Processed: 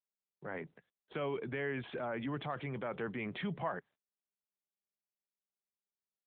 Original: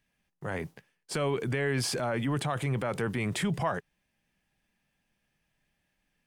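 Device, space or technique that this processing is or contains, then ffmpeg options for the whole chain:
mobile call with aggressive noise cancelling: -af "highpass=170,afftdn=nr=26:nf=-54,volume=-6.5dB" -ar 8000 -c:a libopencore_amrnb -b:a 12200

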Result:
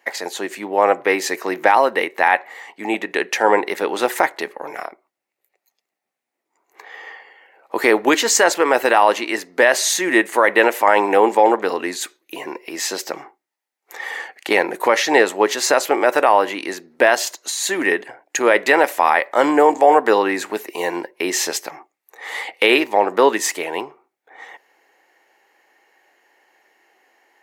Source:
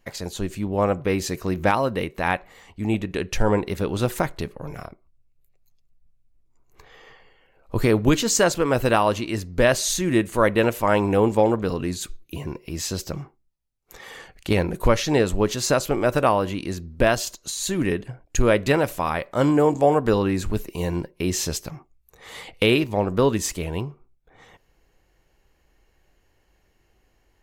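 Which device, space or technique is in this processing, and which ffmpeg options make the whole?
laptop speaker: -af "highpass=f=320:w=0.5412,highpass=f=320:w=1.3066,equalizer=f=830:t=o:w=0.48:g=9,equalizer=f=1.9k:t=o:w=0.57:g=10.5,alimiter=limit=-7dB:level=0:latency=1:release=20,volume=5dB"

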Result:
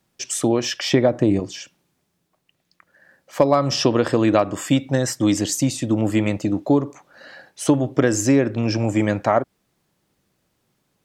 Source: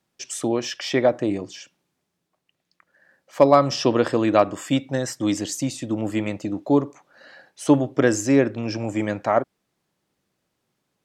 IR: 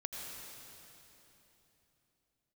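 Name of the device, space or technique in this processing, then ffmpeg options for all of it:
ASMR close-microphone chain: -filter_complex "[0:a]asettb=1/sr,asplit=3[a][b][c];[a]atrim=end=0.924[d];[b]atrim=start=0.92:end=1.4,asetpts=PTS-STARTPTS,afade=t=in:d=0.004:c=qsin,afade=t=out:st=0.476:d=0.004:c=qsin,lowshelf=f=410:g=7[e];[c]atrim=start=1.396[f];[d][e]acrossfade=d=0.004:c1=hsin:c2=qsin[g];[g][f]acrossfade=d=0.004:c1=qsin:c2=hsin,lowshelf=f=120:g=7.5,acompressor=threshold=-17dB:ratio=5,highshelf=f=11k:g=5.5,volume=4.5dB"

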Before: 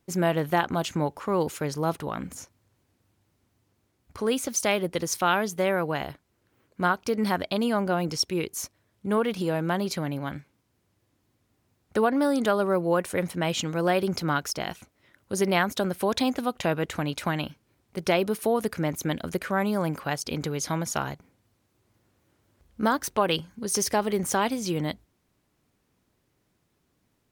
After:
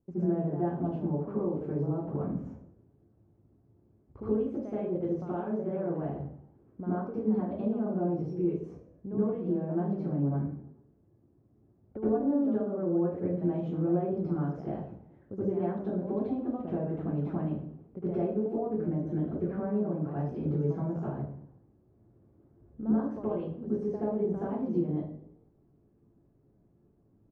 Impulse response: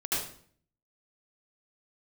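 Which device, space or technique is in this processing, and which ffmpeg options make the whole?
television next door: -filter_complex "[0:a]acompressor=threshold=-34dB:ratio=4,lowpass=490[a];[1:a]atrim=start_sample=2205[b];[a][b]afir=irnorm=-1:irlink=0,asettb=1/sr,asplit=3[c][d][e];[c]atrim=end=10.224[f];[d]atrim=start=10.22:end=12.07,asetpts=PTS-STARTPTS,afade=t=in:d=0.004:c=qsin,afade=t=out:st=1.846:d=0.004:c=qsin,lowpass=3.2k[g];[e]atrim=start=12.066[h];[f][g]acrossfade=d=0.004:c1=hsin:c2=qsin[i];[i][h]acrossfade=d=0.004:c1=qsin:c2=hsin,asplit=5[j][k][l][m][n];[k]adelay=109,afreqshift=38,volume=-24dB[o];[l]adelay=218,afreqshift=76,volume=-28.4dB[p];[m]adelay=327,afreqshift=114,volume=-32.9dB[q];[n]adelay=436,afreqshift=152,volume=-37.3dB[r];[j][o][p][q][r]amix=inputs=5:normalize=0"

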